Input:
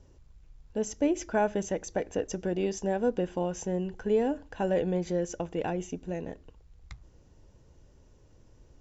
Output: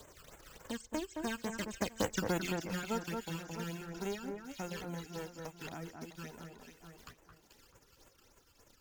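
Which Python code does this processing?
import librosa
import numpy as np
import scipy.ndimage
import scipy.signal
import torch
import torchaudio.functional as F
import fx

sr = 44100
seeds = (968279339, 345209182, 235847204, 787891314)

p1 = fx.envelope_flatten(x, sr, power=0.3)
p2 = fx.doppler_pass(p1, sr, speed_mps=25, closest_m=3.4, pass_at_s=2.18)
p3 = fx.dereverb_blind(p2, sr, rt60_s=1.3)
p4 = fx.phaser_stages(p3, sr, stages=12, low_hz=630.0, high_hz=4800.0, hz=3.5, feedback_pct=25)
p5 = p4 + fx.echo_alternate(p4, sr, ms=218, hz=1900.0, feedback_pct=54, wet_db=-6.5, dry=0)
p6 = fx.band_squash(p5, sr, depth_pct=70)
y = F.gain(torch.from_numpy(p6), 7.5).numpy()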